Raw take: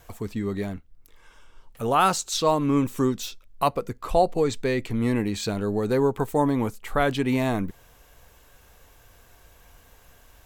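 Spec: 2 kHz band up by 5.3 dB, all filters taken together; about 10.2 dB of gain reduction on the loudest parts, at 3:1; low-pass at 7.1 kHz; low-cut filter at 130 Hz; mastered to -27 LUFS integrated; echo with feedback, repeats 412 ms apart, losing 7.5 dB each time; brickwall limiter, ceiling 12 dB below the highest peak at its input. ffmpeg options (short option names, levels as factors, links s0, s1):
-af "highpass=130,lowpass=7100,equalizer=f=2000:t=o:g=7,acompressor=threshold=0.0398:ratio=3,alimiter=level_in=1.12:limit=0.0631:level=0:latency=1,volume=0.891,aecho=1:1:412|824|1236|1648|2060:0.422|0.177|0.0744|0.0312|0.0131,volume=2.66"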